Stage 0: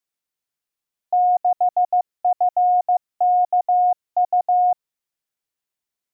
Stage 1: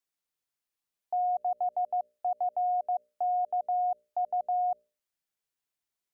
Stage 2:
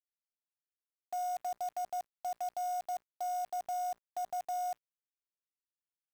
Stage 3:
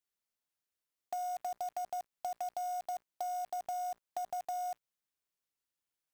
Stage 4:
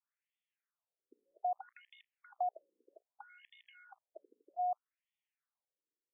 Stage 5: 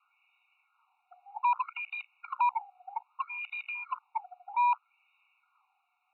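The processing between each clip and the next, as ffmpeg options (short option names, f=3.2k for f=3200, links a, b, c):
-af "bandreject=f=60:t=h:w=6,bandreject=f=120:t=h:w=6,bandreject=f=180:t=h:w=6,bandreject=f=240:t=h:w=6,bandreject=f=300:t=h:w=6,bandreject=f=360:t=h:w=6,bandreject=f=420:t=h:w=6,bandreject=f=480:t=h:w=6,bandreject=f=540:t=h:w=6,bandreject=f=600:t=h:w=6,alimiter=limit=-21.5dB:level=0:latency=1:release=54,volume=-3dB"
-af "acrusher=bits=7:dc=4:mix=0:aa=0.000001,volume=-7.5dB"
-af "acompressor=threshold=-40dB:ratio=6,volume=4.5dB"
-af "afftfilt=real='re*between(b*sr/1024,350*pow(2600/350,0.5+0.5*sin(2*PI*0.63*pts/sr))/1.41,350*pow(2600/350,0.5+0.5*sin(2*PI*0.63*pts/sr))*1.41)':imag='im*between(b*sr/1024,350*pow(2600/350,0.5+0.5*sin(2*PI*0.63*pts/sr))/1.41,350*pow(2600/350,0.5+0.5*sin(2*PI*0.63*pts/sr))*1.41)':win_size=1024:overlap=0.75,volume=4dB"
-filter_complex "[0:a]asplit=2[a][b];[b]highpass=f=720:p=1,volume=33dB,asoftclip=type=tanh:threshold=-26dB[c];[a][c]amix=inputs=2:normalize=0,lowpass=f=1.8k:p=1,volume=-6dB,highpass=f=290:t=q:w=0.5412,highpass=f=290:t=q:w=1.307,lowpass=f=2.8k:t=q:w=0.5176,lowpass=f=2.8k:t=q:w=0.7071,lowpass=f=2.8k:t=q:w=1.932,afreqshift=250,afftfilt=real='re*eq(mod(floor(b*sr/1024/730),2),1)':imag='im*eq(mod(floor(b*sr/1024/730),2),1)':win_size=1024:overlap=0.75,volume=6.5dB"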